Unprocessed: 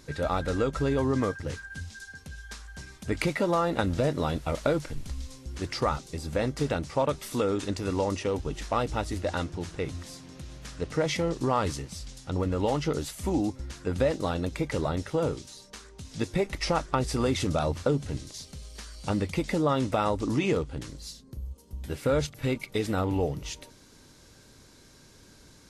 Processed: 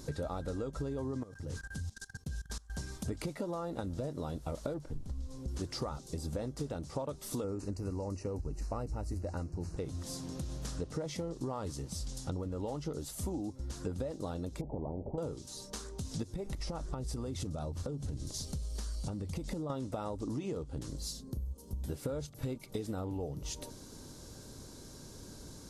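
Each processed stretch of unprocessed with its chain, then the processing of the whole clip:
1.23–2.70 s: expander -45 dBFS + level held to a coarse grid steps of 22 dB + tone controls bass +3 dB, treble +2 dB
4.74–5.48 s: treble shelf 2.1 kHz -9.5 dB + loudspeaker Doppler distortion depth 0.27 ms
7.44–9.77 s: Butterworth band-stop 3.4 kHz, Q 2.4 + bass shelf 120 Hz +10.5 dB
14.61–15.18 s: Gaussian low-pass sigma 20 samples + spectrum-flattening compressor 4:1
16.23–19.70 s: bass shelf 130 Hz +7.5 dB + compression 5:1, threshold -31 dBFS
whole clip: peaking EQ 2.2 kHz -12.5 dB 1.5 oct; compression 8:1, threshold -41 dBFS; trim +6 dB

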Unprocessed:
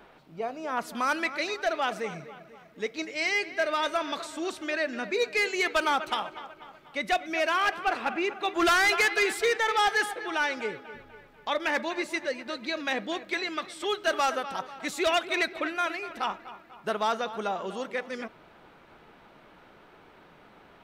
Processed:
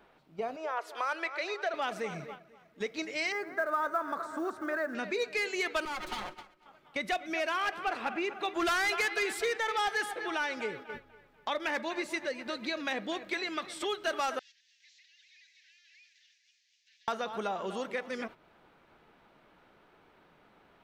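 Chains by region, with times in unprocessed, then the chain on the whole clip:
0.56–1.74 s: steep high-pass 360 Hz 48 dB/octave + treble shelf 5.6 kHz -12 dB
3.32–4.95 s: high-pass 90 Hz + resonant high shelf 2 kHz -12 dB, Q 3 + short-mantissa float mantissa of 4-bit
5.85–6.66 s: comb filter that takes the minimum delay 5.5 ms + compression 12:1, threshold -31 dBFS + three bands expanded up and down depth 70%
14.39–17.08 s: one-bit delta coder 32 kbps, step -47 dBFS + steep high-pass 1.7 kHz 96 dB/octave + differentiator
whole clip: gate -43 dBFS, range -13 dB; compression 2:1, threshold -43 dBFS; trim +5 dB

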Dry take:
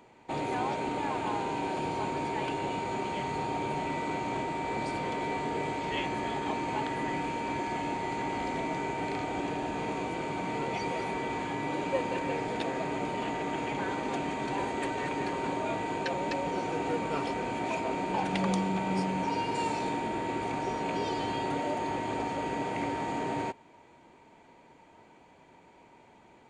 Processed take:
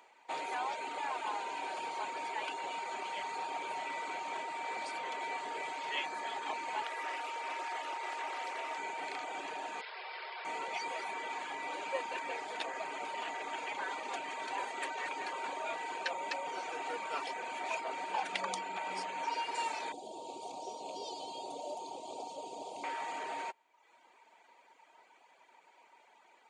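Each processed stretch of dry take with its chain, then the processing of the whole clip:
6.83–8.78 s: high-pass 320 Hz 24 dB/octave + loudspeaker Doppler distortion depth 0.18 ms
9.81–10.45 s: peaking EQ 1.9 kHz +5 dB 0.78 oct + hard clipper -36.5 dBFS + brick-wall FIR band-pass 350–5300 Hz
19.92–22.84 s: Chebyshev band-stop 710–4000 Hz + bass shelf 100 Hz +10 dB
whole clip: reverb removal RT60 0.82 s; high-pass 770 Hz 12 dB/octave

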